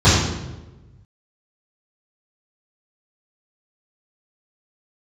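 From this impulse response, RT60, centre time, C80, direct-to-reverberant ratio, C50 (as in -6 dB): 1.1 s, 70 ms, 3.0 dB, -15.0 dB, 0.0 dB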